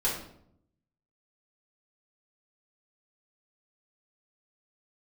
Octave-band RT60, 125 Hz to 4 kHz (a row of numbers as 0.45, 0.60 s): 1.1, 0.95, 0.75, 0.65, 0.50, 0.50 s